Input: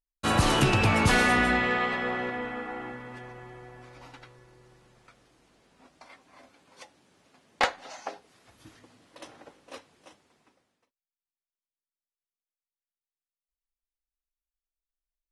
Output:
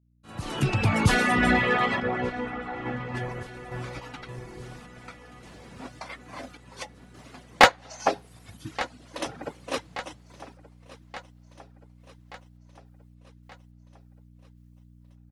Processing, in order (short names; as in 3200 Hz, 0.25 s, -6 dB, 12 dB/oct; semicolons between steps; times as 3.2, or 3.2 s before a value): opening faded in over 4.75 s; random-step tremolo 3.5 Hz; reverb removal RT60 1.2 s; hum 60 Hz, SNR 26 dB; on a send: feedback echo 1.177 s, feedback 56%, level -19 dB; on the sum: AGC gain up to 13.5 dB; 2–3.15 air absorption 88 m; in parallel at -11 dB: wavefolder -19 dBFS; on the sum: bell 140 Hz +6 dB 1.6 oct